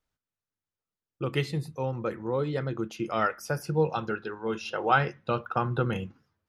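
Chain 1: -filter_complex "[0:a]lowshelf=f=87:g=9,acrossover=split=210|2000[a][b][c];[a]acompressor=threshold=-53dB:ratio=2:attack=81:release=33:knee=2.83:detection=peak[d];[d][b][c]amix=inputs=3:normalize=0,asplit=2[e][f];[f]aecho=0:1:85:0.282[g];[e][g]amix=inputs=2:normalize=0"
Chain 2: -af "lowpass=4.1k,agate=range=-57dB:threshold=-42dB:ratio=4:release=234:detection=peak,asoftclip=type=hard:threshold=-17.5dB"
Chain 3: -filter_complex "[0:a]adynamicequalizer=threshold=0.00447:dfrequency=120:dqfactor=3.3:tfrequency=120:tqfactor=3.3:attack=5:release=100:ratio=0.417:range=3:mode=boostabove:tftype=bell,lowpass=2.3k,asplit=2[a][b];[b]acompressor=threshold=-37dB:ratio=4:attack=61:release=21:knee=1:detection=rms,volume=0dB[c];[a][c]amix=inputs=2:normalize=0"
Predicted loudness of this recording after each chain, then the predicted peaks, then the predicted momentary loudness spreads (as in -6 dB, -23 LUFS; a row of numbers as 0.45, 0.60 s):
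-30.0, -30.5, -25.5 LUFS; -8.0, -17.5, -7.0 dBFS; 9, 7, 7 LU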